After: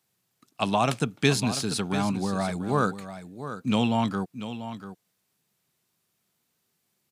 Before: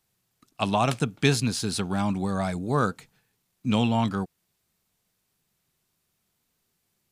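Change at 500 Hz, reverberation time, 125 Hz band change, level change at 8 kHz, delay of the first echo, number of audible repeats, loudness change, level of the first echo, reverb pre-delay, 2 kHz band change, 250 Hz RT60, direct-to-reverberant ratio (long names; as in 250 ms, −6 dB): +0.5 dB, no reverb audible, −2.0 dB, +0.5 dB, 690 ms, 1, −1.0 dB, −11.5 dB, no reverb audible, +0.5 dB, no reverb audible, no reverb audible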